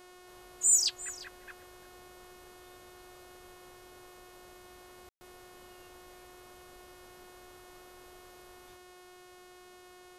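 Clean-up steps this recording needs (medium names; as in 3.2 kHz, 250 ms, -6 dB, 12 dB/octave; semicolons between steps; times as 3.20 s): de-hum 362.4 Hz, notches 32; room tone fill 5.09–5.21 s; inverse comb 350 ms -18 dB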